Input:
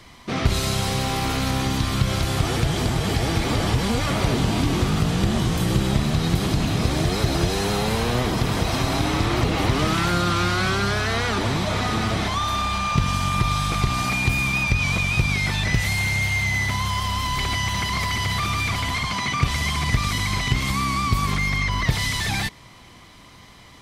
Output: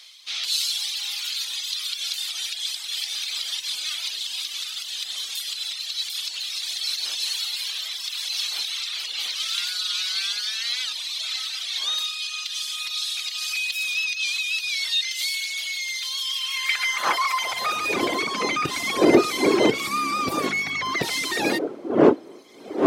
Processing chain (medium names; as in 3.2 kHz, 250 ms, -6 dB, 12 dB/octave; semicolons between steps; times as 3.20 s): wind noise 410 Hz -27 dBFS; speed mistake 24 fps film run at 25 fps; reverb removal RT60 1.7 s; high-pass sweep 3.6 kHz -> 340 Hz, 16.23–18.03 s; trim +1.5 dB